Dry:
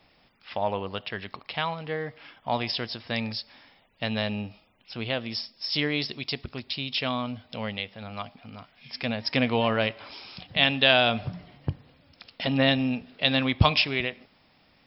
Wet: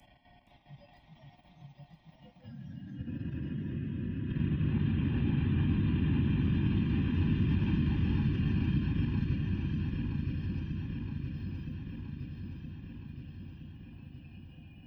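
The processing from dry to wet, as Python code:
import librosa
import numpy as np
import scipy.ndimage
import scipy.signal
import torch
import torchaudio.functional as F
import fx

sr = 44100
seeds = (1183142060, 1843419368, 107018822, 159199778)

p1 = fx.spec_quant(x, sr, step_db=30)
p2 = fx.paulstretch(p1, sr, seeds[0], factor=40.0, window_s=0.25, from_s=11.52)
p3 = fx.high_shelf(p2, sr, hz=3200.0, db=6.5)
p4 = p3 + 0.81 * np.pad(p3, (int(1.2 * sr / 1000.0), 0))[:len(p3)]
p5 = fx.dynamic_eq(p4, sr, hz=350.0, q=1.1, threshold_db=-46.0, ratio=4.0, max_db=4)
p6 = fx.level_steps(p5, sr, step_db=10)
p7 = fx.noise_reduce_blind(p6, sr, reduce_db=21)
p8 = fx.echo_pitch(p7, sr, ms=468, semitones=2, count=2, db_per_echo=-6.0)
p9 = p8 + fx.echo_feedback(p8, sr, ms=969, feedback_pct=54, wet_db=-6.5, dry=0)
y = fx.band_squash(p9, sr, depth_pct=40)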